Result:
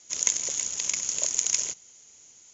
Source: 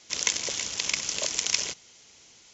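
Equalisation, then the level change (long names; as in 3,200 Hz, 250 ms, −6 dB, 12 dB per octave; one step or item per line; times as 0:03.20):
low-pass with resonance 6,800 Hz, resonance Q 12
high-shelf EQ 3,300 Hz −8.5 dB
−5.5 dB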